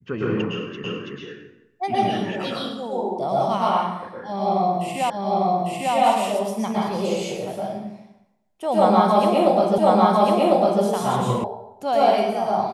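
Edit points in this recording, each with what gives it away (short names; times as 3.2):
0.84 repeat of the last 0.33 s
5.1 repeat of the last 0.85 s
9.78 repeat of the last 1.05 s
11.44 sound cut off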